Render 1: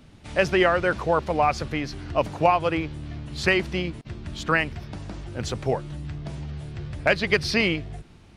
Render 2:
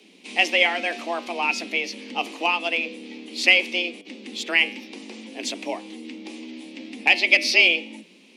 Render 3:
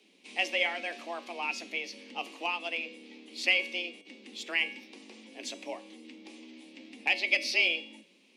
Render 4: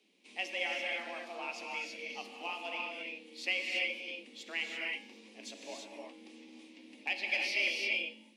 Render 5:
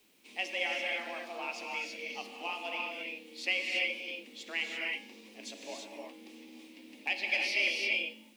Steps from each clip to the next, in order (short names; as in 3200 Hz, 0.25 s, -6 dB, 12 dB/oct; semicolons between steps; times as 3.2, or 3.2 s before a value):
resonant high shelf 1700 Hz +8.5 dB, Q 3; de-hum 107.7 Hz, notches 31; frequency shift +170 Hz; gain -4.5 dB
low shelf 130 Hz -11 dB; resonator 560 Hz, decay 0.54 s, mix 70%
non-linear reverb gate 0.36 s rising, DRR -1 dB; gain -8 dB
requantised 12-bit, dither triangular; gain +2 dB